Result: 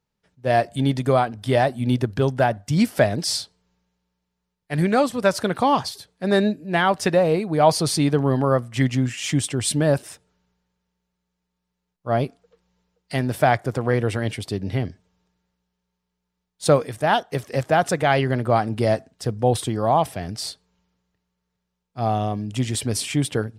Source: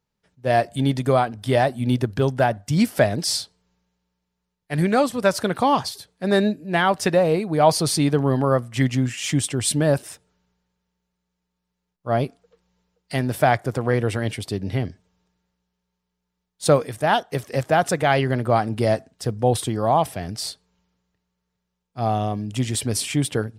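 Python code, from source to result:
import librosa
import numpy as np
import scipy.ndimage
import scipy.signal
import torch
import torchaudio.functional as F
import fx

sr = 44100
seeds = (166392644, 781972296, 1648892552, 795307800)

y = fx.high_shelf(x, sr, hz=11000.0, db=-5.0)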